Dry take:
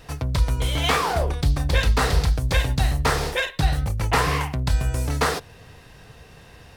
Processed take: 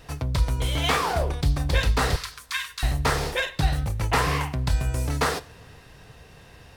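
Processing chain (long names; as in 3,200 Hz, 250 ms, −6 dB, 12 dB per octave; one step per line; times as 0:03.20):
0:02.16–0:02.83: linear-phase brick-wall high-pass 960 Hz
coupled-rooms reverb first 0.48 s, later 2.7 s, from −18 dB, DRR 16 dB
level −2 dB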